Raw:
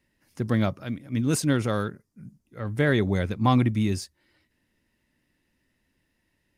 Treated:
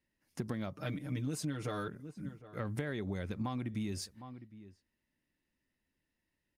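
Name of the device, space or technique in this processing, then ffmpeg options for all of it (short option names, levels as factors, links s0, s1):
serial compression, peaks first: -filter_complex "[0:a]equalizer=f=110:t=o:w=0.27:g=-4,agate=range=0.224:threshold=0.00178:ratio=16:detection=peak,asettb=1/sr,asplit=3[s0][s1][s2];[s0]atrim=end=0.774[s3];[s1]atrim=start=0.77:end=1.88,asetpts=PTS-STARTPTS,afade=t=in:d=0.004:c=qsin,afade=t=out:st=1.106:d=0.004:c=qsin,aecho=1:1:6.6:0.87,atrim=end_sample=48951[s4];[s2]atrim=start=1.876[s5];[s3][s4]acrossfade=d=0.004:c1=hsin:c2=qsin[s6];[s6][s5]acrossfade=d=0.004:c1=qsin:c2=hsin,asplit=2[s7][s8];[s8]adelay=758,volume=0.0355,highshelf=f=4000:g=-17.1[s9];[s7][s9]amix=inputs=2:normalize=0,acompressor=threshold=0.0355:ratio=6,acompressor=threshold=0.0141:ratio=2.5,volume=1.12"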